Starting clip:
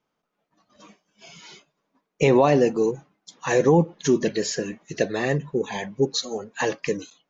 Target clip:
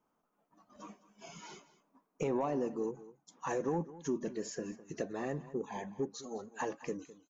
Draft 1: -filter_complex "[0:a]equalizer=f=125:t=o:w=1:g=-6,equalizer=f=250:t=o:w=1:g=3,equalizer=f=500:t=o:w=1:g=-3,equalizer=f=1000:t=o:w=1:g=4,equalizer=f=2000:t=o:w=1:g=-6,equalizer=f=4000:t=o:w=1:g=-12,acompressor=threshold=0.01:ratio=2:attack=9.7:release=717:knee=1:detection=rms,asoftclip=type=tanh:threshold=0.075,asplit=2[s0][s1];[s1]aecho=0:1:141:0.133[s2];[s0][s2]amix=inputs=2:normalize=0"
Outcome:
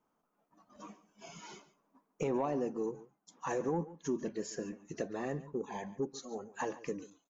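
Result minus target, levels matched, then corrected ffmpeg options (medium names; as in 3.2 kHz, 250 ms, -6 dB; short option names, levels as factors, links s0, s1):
echo 66 ms early
-filter_complex "[0:a]equalizer=f=125:t=o:w=1:g=-6,equalizer=f=250:t=o:w=1:g=3,equalizer=f=500:t=o:w=1:g=-3,equalizer=f=1000:t=o:w=1:g=4,equalizer=f=2000:t=o:w=1:g=-6,equalizer=f=4000:t=o:w=1:g=-12,acompressor=threshold=0.01:ratio=2:attack=9.7:release=717:knee=1:detection=rms,asoftclip=type=tanh:threshold=0.075,asplit=2[s0][s1];[s1]aecho=0:1:207:0.133[s2];[s0][s2]amix=inputs=2:normalize=0"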